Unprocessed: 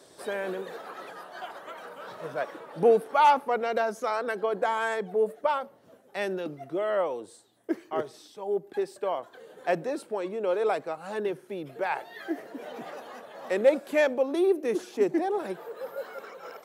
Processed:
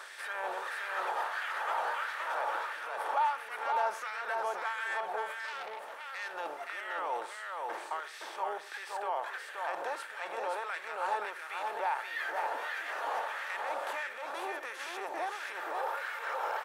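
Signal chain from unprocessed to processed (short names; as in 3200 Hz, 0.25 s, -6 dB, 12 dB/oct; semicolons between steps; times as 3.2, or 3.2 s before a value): per-bin compression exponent 0.6; limiter -21 dBFS, peak gain reduction 11.5 dB; LFO high-pass sine 1.5 Hz 810–1900 Hz; on a send: echo 0.524 s -3.5 dB; 5.39–6.34 on the sum: core saturation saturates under 2400 Hz; gain -6 dB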